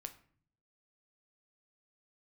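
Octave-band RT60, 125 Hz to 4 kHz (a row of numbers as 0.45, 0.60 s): 0.95, 0.85, 0.55, 0.50, 0.45, 0.35 s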